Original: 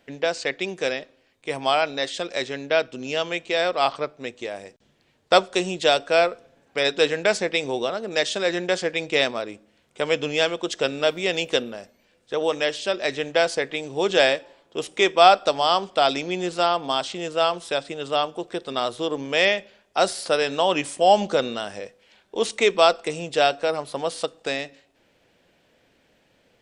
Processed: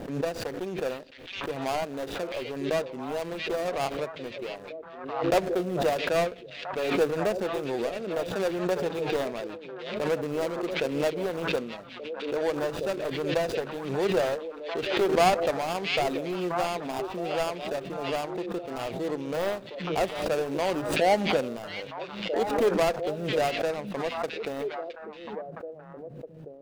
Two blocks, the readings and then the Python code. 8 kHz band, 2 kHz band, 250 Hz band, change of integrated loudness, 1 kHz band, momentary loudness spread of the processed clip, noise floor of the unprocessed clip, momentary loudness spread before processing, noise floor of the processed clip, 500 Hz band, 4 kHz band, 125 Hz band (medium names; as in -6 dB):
-8.0 dB, -8.5 dB, -1.0 dB, -6.5 dB, -7.5 dB, 13 LU, -64 dBFS, 12 LU, -44 dBFS, -4.5 dB, -11.0 dB, +1.5 dB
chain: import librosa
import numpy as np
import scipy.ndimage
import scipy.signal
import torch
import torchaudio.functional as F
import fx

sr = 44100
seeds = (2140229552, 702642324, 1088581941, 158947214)

y = scipy.signal.medfilt(x, 41)
y = fx.echo_stepped(y, sr, ms=665, hz=3000.0, octaves=-1.4, feedback_pct=70, wet_db=-3)
y = fx.pre_swell(y, sr, db_per_s=58.0)
y = y * librosa.db_to_amplitude(-3.0)